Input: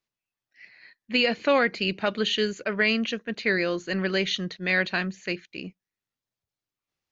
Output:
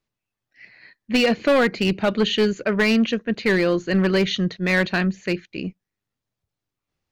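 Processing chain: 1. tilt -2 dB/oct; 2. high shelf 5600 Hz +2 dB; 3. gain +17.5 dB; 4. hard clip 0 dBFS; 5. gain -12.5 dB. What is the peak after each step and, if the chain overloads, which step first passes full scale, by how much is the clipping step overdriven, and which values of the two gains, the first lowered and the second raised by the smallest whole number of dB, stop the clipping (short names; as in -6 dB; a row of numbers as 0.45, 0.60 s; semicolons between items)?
-9.0, -9.0, +8.5, 0.0, -12.5 dBFS; step 3, 8.5 dB; step 3 +8.5 dB, step 5 -3.5 dB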